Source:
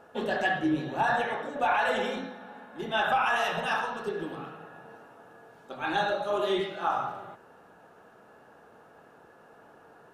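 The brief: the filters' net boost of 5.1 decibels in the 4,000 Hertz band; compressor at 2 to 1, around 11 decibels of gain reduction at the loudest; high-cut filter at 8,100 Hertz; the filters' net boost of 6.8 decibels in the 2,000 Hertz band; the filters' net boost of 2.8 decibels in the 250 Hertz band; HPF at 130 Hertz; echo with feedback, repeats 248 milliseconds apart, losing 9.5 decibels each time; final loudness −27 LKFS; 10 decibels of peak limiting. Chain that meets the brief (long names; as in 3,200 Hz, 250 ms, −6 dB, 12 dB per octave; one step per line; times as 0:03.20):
high-pass filter 130 Hz
low-pass filter 8,100 Hz
parametric band 250 Hz +4 dB
parametric band 2,000 Hz +8.5 dB
parametric band 4,000 Hz +3 dB
downward compressor 2 to 1, threshold −39 dBFS
brickwall limiter −31 dBFS
repeating echo 248 ms, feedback 33%, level −9.5 dB
level +12.5 dB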